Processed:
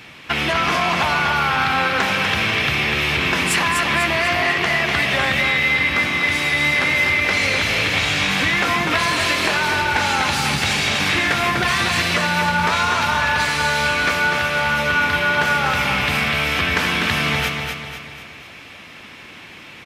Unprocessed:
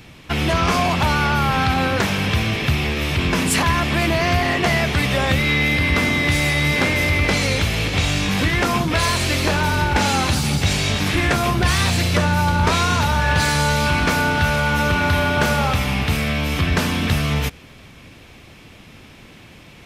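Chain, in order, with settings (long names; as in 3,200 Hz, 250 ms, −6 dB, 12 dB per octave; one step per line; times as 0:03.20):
high-pass filter 160 Hz 6 dB per octave
parametric band 1,900 Hz +9 dB 2.6 octaves
downward compressor, threshold −15 dBFS, peak gain reduction 7.5 dB
on a send: repeating echo 247 ms, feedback 46%, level −5 dB
on the sum: level −1.5 dB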